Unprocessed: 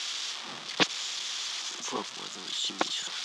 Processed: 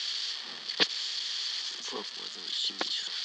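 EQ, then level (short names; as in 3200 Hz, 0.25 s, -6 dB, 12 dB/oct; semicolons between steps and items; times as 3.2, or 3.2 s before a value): speaker cabinet 150–9100 Hz, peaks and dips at 210 Hz +4 dB, 440 Hz +7 dB, 1800 Hz +9 dB, 3200 Hz +8 dB, 4900 Hz +5 dB; bell 4400 Hz +12 dB 0.23 oct; -8.0 dB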